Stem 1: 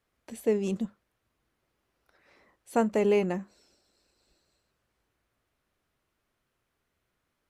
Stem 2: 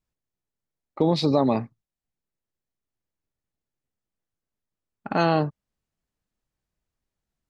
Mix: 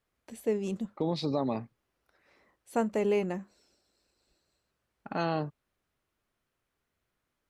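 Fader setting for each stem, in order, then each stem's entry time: -3.5, -9.5 dB; 0.00, 0.00 s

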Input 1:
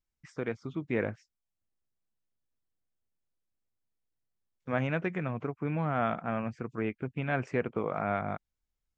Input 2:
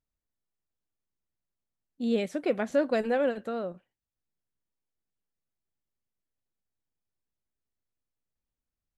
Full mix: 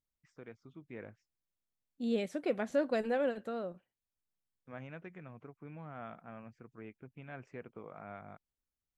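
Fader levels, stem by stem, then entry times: -16.5, -5.5 dB; 0.00, 0.00 s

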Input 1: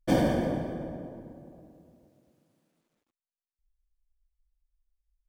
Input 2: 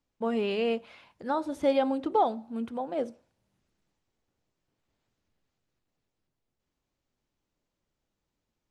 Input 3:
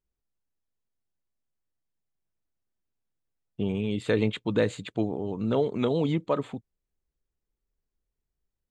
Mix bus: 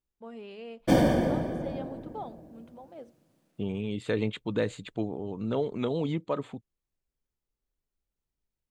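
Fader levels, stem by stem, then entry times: +2.5, -15.0, -4.0 dB; 0.80, 0.00, 0.00 s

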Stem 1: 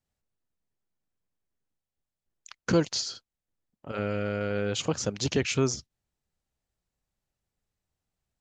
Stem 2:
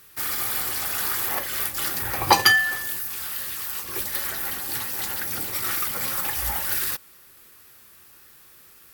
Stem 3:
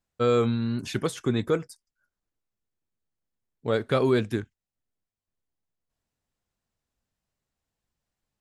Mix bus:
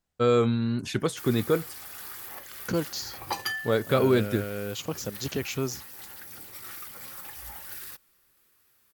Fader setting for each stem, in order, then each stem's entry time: -4.5, -15.0, +0.5 dB; 0.00, 1.00, 0.00 s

